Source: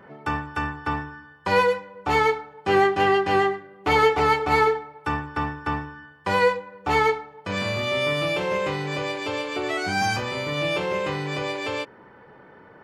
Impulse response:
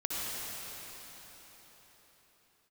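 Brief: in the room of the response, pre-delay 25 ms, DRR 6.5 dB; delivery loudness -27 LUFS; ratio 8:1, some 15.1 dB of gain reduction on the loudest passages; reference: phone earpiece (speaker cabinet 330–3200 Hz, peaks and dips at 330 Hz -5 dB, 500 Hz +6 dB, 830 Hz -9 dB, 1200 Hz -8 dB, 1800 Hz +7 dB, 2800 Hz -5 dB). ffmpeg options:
-filter_complex "[0:a]acompressor=threshold=-30dB:ratio=8,asplit=2[a][b];[1:a]atrim=start_sample=2205,adelay=25[c];[b][c]afir=irnorm=-1:irlink=0,volume=-13dB[d];[a][d]amix=inputs=2:normalize=0,highpass=330,equalizer=f=330:t=q:w=4:g=-5,equalizer=f=500:t=q:w=4:g=6,equalizer=f=830:t=q:w=4:g=-9,equalizer=f=1.2k:t=q:w=4:g=-8,equalizer=f=1.8k:t=q:w=4:g=7,equalizer=f=2.8k:t=q:w=4:g=-5,lowpass=f=3.2k:w=0.5412,lowpass=f=3.2k:w=1.3066,volume=7dB"

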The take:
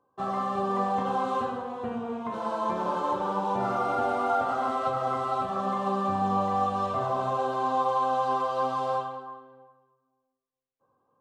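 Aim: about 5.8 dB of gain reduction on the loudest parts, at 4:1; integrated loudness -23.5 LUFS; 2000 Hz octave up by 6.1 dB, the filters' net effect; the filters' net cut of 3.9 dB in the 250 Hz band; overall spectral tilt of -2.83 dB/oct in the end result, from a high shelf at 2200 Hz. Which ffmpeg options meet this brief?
-af "equalizer=f=250:t=o:g=-5.5,equalizer=f=2k:t=o:g=5.5,highshelf=f=2.2k:g=7,acompressor=threshold=-27dB:ratio=4,volume=7dB"

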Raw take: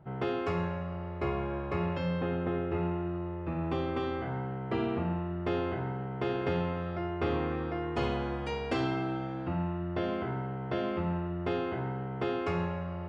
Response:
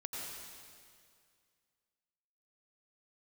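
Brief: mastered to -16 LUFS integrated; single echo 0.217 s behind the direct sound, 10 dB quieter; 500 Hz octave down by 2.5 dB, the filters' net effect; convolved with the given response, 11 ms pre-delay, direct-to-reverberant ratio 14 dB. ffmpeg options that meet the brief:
-filter_complex "[0:a]equalizer=f=500:t=o:g=-3.5,aecho=1:1:217:0.316,asplit=2[a][b];[1:a]atrim=start_sample=2205,adelay=11[c];[b][c]afir=irnorm=-1:irlink=0,volume=-14.5dB[d];[a][d]amix=inputs=2:normalize=0,volume=18dB"

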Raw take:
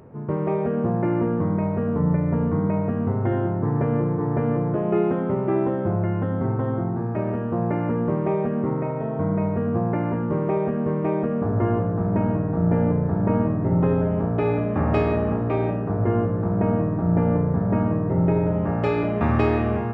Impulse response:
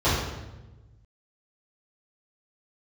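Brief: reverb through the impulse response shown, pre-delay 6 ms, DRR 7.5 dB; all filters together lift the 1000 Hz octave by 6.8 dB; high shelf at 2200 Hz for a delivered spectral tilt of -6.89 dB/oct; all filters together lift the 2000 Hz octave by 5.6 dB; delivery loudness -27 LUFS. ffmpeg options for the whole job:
-filter_complex "[0:a]equalizer=f=1k:t=o:g=8,equalizer=f=2k:t=o:g=7,highshelf=f=2.2k:g=-5,asplit=2[a][b];[1:a]atrim=start_sample=2205,adelay=6[c];[b][c]afir=irnorm=-1:irlink=0,volume=-25dB[d];[a][d]amix=inputs=2:normalize=0,volume=-8dB"

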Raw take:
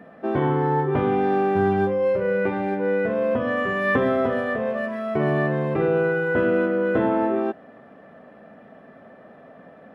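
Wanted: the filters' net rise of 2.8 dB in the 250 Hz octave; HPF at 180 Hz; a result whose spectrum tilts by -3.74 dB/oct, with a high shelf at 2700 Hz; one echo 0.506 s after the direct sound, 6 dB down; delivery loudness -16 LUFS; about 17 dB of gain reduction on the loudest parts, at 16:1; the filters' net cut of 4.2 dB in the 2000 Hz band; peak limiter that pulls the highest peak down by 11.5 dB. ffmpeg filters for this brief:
-af "highpass=180,equalizer=f=250:t=o:g=5.5,equalizer=f=2k:t=o:g=-3,highshelf=f=2.7k:g=-7.5,acompressor=threshold=-32dB:ratio=16,alimiter=level_in=10dB:limit=-24dB:level=0:latency=1,volume=-10dB,aecho=1:1:506:0.501,volume=25.5dB"

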